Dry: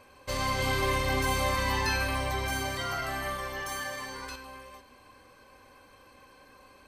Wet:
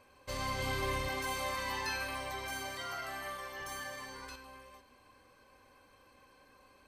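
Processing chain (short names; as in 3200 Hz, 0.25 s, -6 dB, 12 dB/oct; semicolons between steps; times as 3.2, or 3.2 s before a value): 1.08–3.6 low shelf 220 Hz -11.5 dB; gain -7 dB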